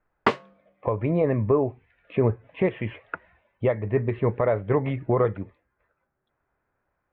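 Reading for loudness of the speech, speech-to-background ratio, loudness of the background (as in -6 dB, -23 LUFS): -25.5 LUFS, 2.0 dB, -27.5 LUFS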